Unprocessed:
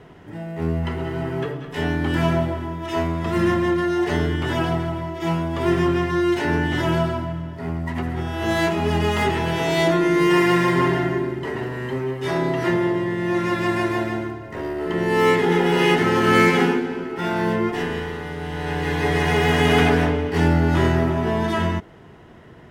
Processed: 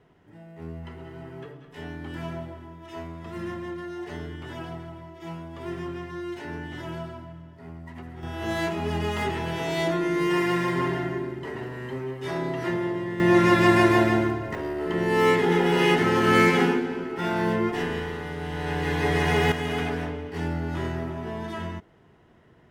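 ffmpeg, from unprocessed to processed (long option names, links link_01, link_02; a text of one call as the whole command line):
ffmpeg -i in.wav -af "asetnsamples=nb_out_samples=441:pad=0,asendcmd='8.23 volume volume -7dB;13.2 volume volume 4dB;14.55 volume volume -3dB;19.52 volume volume -11.5dB',volume=-14.5dB" out.wav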